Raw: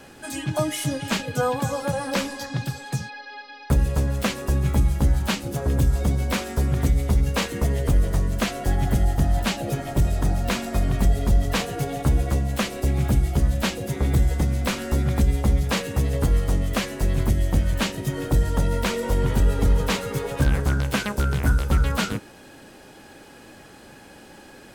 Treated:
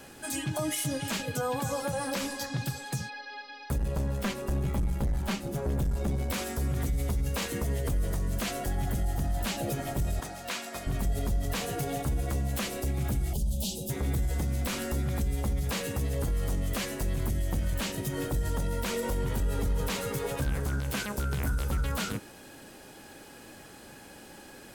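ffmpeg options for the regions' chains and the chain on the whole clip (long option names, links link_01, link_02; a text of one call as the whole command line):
ffmpeg -i in.wav -filter_complex "[0:a]asettb=1/sr,asplit=3[link_01][link_02][link_03];[link_01]atrim=end=3.784[link_04];[link_02]atrim=start=3.78:end=6.3,asetpts=PTS-STARTPTS,afade=type=in:duration=0.004:curve=qsin,afade=type=out:start_time=2.516:duration=0.004:curve=qsin,highshelf=frequency=3300:gain=-8.5,aecho=1:1:5.1:0.42,atrim=end_sample=111132,aeval=exprs='(tanh(8.91*val(0)+0.3)-tanh(0.3))/8.91':channel_layout=same[link_05];[link_03]atrim=start=6.296[link_06];[link_04][link_05]acrossfade=duration=0.004:curve1=hsin:curve2=qsin[link_07];[link_07][link_06]acrossfade=duration=0.004:curve1=qsin:curve2=hsin,asettb=1/sr,asplit=3[link_08][link_09][link_10];[link_08]atrim=end=10.204[link_11];[link_09]atrim=start=10.2:end=10.87,asetpts=PTS-STARTPTS,afade=type=in:duration=0.004:curve=qsin,afade=type=out:start_time=0.666:duration=0.004:curve=qsin,highpass=frequency=1000:poles=1,highshelf=frequency=9400:gain=-10.5[link_12];[link_10]atrim=start=10.866[link_13];[link_11][link_12]acrossfade=duration=0.004:curve1=hsin:curve2=qsin[link_14];[link_14][link_13]acrossfade=duration=0.004:curve1=qsin:curve2=hsin,asettb=1/sr,asplit=3[link_15][link_16][link_17];[link_15]atrim=end=13.334[link_18];[link_16]atrim=start=13.33:end=13.9,asetpts=PTS-STARTPTS,afade=type=in:duration=0.004:curve=qsin,afade=type=out:start_time=0.566:duration=0.004:curve=qsin,asuperstop=centerf=1600:order=8:qfactor=0.79,aecho=1:1:4.9:0.67,atrim=end_sample=25137,acrossover=split=170|3000[link_19][link_20][link_21];[link_20]acompressor=threshold=-38dB:ratio=2.5:attack=3.2:release=140:knee=2.83:detection=peak[link_22];[link_19][link_22][link_21]amix=inputs=3:normalize=0[link_23];[link_17]atrim=start=13.896[link_24];[link_18][link_23]acrossfade=duration=0.004:curve1=hsin:curve2=qsin[link_25];[link_25][link_24]acrossfade=duration=0.004:curve1=qsin:curve2=hsin,highshelf=frequency=7600:gain=8.5,alimiter=limit=-18.5dB:level=0:latency=1:release=53,volume=-3.5dB" out.wav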